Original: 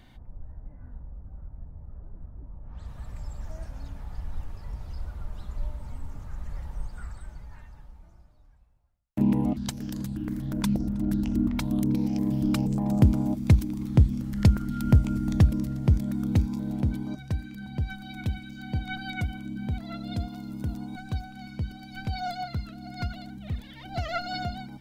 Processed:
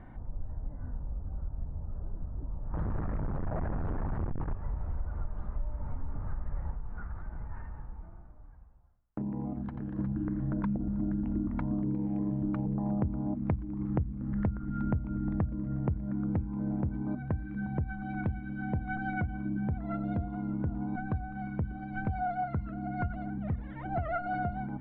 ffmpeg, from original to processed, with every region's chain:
ffmpeg -i in.wav -filter_complex "[0:a]asettb=1/sr,asplit=3[link_01][link_02][link_03];[link_01]atrim=end=2.734[link_04];[link_02]atrim=start=2.73:end=4.54,asetpts=PTS-STARTPTS,afade=type=in:duration=0.004:curve=qsin,afade=type=out:start_time=1.806:duration=0.004:curve=qsin,aeval=exprs='(tanh(79.4*val(0)+0.6)-tanh(0.6))/79.4':channel_layout=same,aeval=exprs='0.0398*sin(PI/2*4.47*val(0)/0.0398)':channel_layout=same[link_05];[link_03]atrim=start=4.536[link_06];[link_04][link_05]acrossfade=duration=0.004:curve1=hsin:curve2=qsin[link_07];[link_07][link_06]acrossfade=duration=0.004:curve1=qsin:curve2=hsin,asettb=1/sr,asplit=3[link_08][link_09][link_10];[link_08]atrim=end=6.734[link_11];[link_09]atrim=start=6.73:end=9.99,asetpts=PTS-STARTPTS,afade=type=in:duration=0.004:curve=qsin,afade=type=out:start_time=3.256:duration=0.004:curve=qsin,bandreject=frequency=580:width=13,aecho=1:1:87:0.266,atrim=end_sample=143766,acompressor=threshold=-39dB:ratio=4:attack=3.2:release=140:knee=1:detection=peak[link_12];[link_10]atrim=start=9.986[link_13];[link_11][link_12]acrossfade=duration=0.004:curve1=hsin:curve2=qsin[link_14];[link_14][link_13]acrossfade=duration=0.004:curve1=qsin:curve2=hsin,lowpass=frequency=1600:width=0.5412,lowpass=frequency=1600:width=1.3066,bandreject=frequency=60:width_type=h:width=6,bandreject=frequency=120:width_type=h:width=6,bandreject=frequency=180:width_type=h:width=6,bandreject=frequency=240:width_type=h:width=6,acompressor=threshold=-35dB:ratio=6,volume=6dB" out.wav

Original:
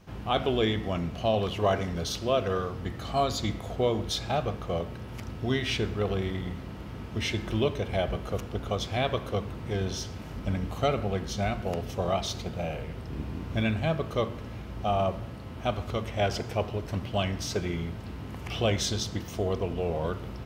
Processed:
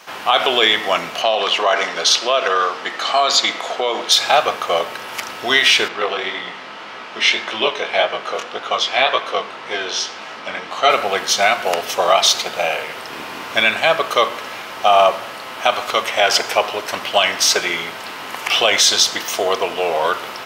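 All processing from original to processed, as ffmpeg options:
ffmpeg -i in.wav -filter_complex "[0:a]asettb=1/sr,asplit=3[link_01][link_02][link_03];[link_01]atrim=end=1.224[link_04];[link_02]atrim=start=1.22:end=4.12,asetpts=PTS-STARTPTS,afade=type=in:duration=0.004:curve=qsin,afade=type=out:start_time=2.896:duration=0.004:curve=qsin,acrossover=split=170 7600:gain=0.158 1 0.126[link_05][link_06][link_07];[link_05][link_06][link_07]amix=inputs=3:normalize=0,acompressor=threshold=-26dB:ratio=6:attack=3.2:release=140:knee=1:detection=peak[link_08];[link_03]atrim=start=4.116[link_09];[link_04][link_08]acrossfade=duration=0.004:curve1=hsin:curve2=qsin[link_10];[link_10][link_09]acrossfade=duration=0.004:curve1=qsin:curve2=hsin,asettb=1/sr,asplit=3[link_11][link_12][link_13];[link_11]atrim=end=5.884[link_14];[link_12]atrim=start=5.88:end=10.9,asetpts=PTS-STARTPTS,afade=type=in:duration=0.004:curve=qsin,afade=type=out:start_time=5.016:duration=0.004:curve=qsin,flanger=delay=17:depth=7.1:speed=1.8,highpass=130,lowpass=5100[link_15];[link_13]atrim=start=10.896[link_16];[link_14][link_15]acrossfade=duration=0.004:curve1=hsin:curve2=qsin[link_17];[link_17][link_16]acrossfade=duration=0.004:curve1=qsin:curve2=hsin,highpass=900,alimiter=level_in=22.5dB:limit=-1dB:release=50:level=0:latency=1,volume=-1dB" out.wav

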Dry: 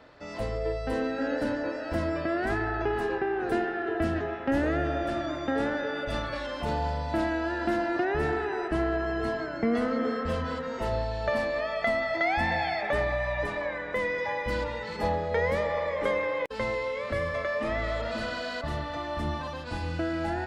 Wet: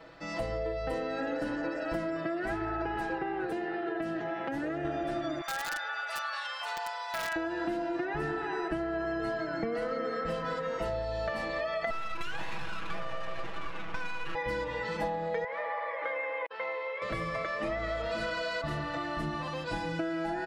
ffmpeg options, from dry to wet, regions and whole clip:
ffmpeg -i in.wav -filter_complex "[0:a]asettb=1/sr,asplit=3[link_01][link_02][link_03];[link_01]atrim=end=3.454[link_04];[link_02]atrim=start=3.45:end=4.85,asetpts=PTS-STARTPTS,afade=type=in:duration=0.004:curve=qsin,afade=type=out:start_time=1.396:duration=0.004:curve=qsin,highpass=frequency=88:poles=1,acompressor=threshold=-31dB:ratio=3:attack=3.2:release=140:knee=1:detection=peak[link_05];[link_03]atrim=start=4.846[link_06];[link_04][link_05]acrossfade=duration=0.004:curve1=hsin:curve2=qsin[link_07];[link_07][link_06]acrossfade=duration=0.004:curve1=qsin:curve2=hsin,asettb=1/sr,asplit=3[link_08][link_09][link_10];[link_08]atrim=end=5.414[link_11];[link_09]atrim=start=5.41:end=7.36,asetpts=PTS-STARTPTS,afade=type=in:duration=0.004:curve=qsin,afade=type=out:start_time=1.946:duration=0.004:curve=qsin,highpass=frequency=840:width=0.5412,highpass=frequency=840:width=1.3066,aeval=exprs='(mod(21.1*val(0)+1,2)-1)/21.1':channel_layout=same[link_12];[link_10]atrim=start=7.356[link_13];[link_11][link_12]acrossfade=duration=0.004:curve1=hsin:curve2=qsin[link_14];[link_14][link_13]acrossfade=duration=0.004:curve1=qsin:curve2=hsin,asettb=1/sr,asplit=3[link_15][link_16][link_17];[link_15]atrim=end=11.904[link_18];[link_16]atrim=start=11.9:end=14.35,asetpts=PTS-STARTPTS,afade=type=in:duration=0.004:curve=qsin,afade=type=out:start_time=2.446:duration=0.004:curve=qsin,aeval=exprs='abs(val(0))':channel_layout=same,adynamicsmooth=sensitivity=4:basefreq=2000[link_19];[link_17]atrim=start=14.346[link_20];[link_18][link_19]acrossfade=duration=0.004:curve1=hsin:curve2=qsin[link_21];[link_21][link_20]acrossfade=duration=0.004:curve1=qsin:curve2=hsin,asettb=1/sr,asplit=3[link_22][link_23][link_24];[link_22]atrim=end=15.444[link_25];[link_23]atrim=start=15.44:end=17.02,asetpts=PTS-STARTPTS,afade=type=in:duration=0.004:curve=qsin,afade=type=out:start_time=1.576:duration=0.004:curve=qsin,asuperpass=centerf=1300:order=4:qfactor=0.65,tremolo=f=68:d=0.462[link_26];[link_24]atrim=start=17.016[link_27];[link_25][link_26]acrossfade=duration=0.004:curve1=hsin:curve2=qsin[link_28];[link_28][link_27]acrossfade=duration=0.004:curve1=qsin:curve2=hsin,aecho=1:1:6.1:0.97,acompressor=threshold=-29dB:ratio=6,volume=-1dB" out.wav

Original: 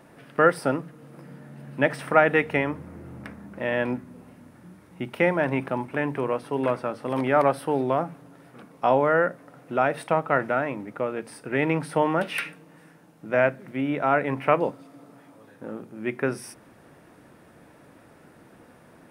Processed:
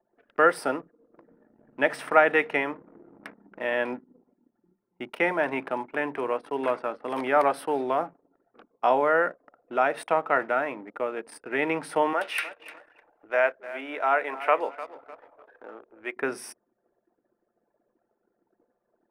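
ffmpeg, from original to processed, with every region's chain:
ffmpeg -i in.wav -filter_complex "[0:a]asettb=1/sr,asplit=3[link_01][link_02][link_03];[link_01]atrim=end=12.134[link_04];[link_02]atrim=start=12.13:end=16.16,asetpts=PTS-STARTPTS,afade=type=in:duration=0.004:curve=qsin,afade=type=out:start_time=4.026:duration=0.004:curve=qsin,highpass=460,acompressor=mode=upward:threshold=-39dB:ratio=2.5:attack=3.2:release=140:knee=2.83:detection=peak,aecho=1:1:301|602|903:0.168|0.0604|0.0218,atrim=end_sample=177723[link_05];[link_03]atrim=start=16.156[link_06];[link_04][link_05]acrossfade=duration=0.004:curve1=hsin:curve2=qsin[link_07];[link_07][link_06]acrossfade=duration=0.004:curve1=qsin:curve2=hsin,highpass=360,anlmdn=0.0631,bandreject=frequency=540:width=12" out.wav

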